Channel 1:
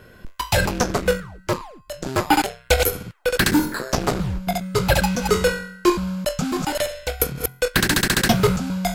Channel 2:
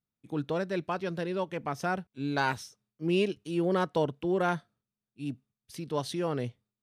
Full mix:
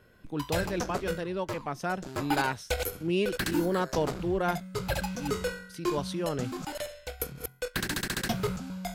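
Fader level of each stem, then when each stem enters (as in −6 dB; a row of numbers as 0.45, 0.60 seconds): −13.0, −1.0 decibels; 0.00, 0.00 seconds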